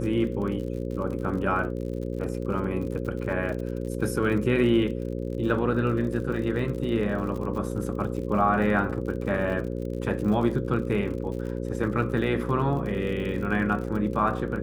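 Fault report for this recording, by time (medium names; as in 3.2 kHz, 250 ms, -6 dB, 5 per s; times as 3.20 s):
buzz 60 Hz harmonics 9 -31 dBFS
crackle 61 per s -35 dBFS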